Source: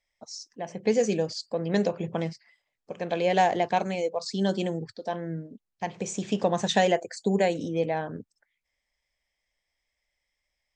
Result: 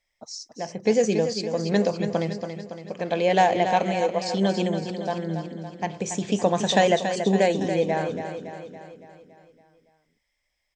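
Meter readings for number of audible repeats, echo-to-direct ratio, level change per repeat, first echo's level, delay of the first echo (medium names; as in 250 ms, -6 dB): 6, -7.0 dB, -5.0 dB, -8.5 dB, 281 ms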